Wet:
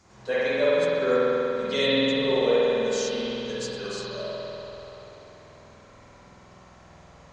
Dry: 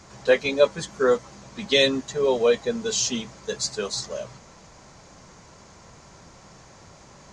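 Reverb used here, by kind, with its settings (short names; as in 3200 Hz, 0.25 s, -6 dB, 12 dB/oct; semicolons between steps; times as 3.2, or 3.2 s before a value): spring tank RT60 3.4 s, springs 48 ms, chirp 20 ms, DRR -9.5 dB; gain -11 dB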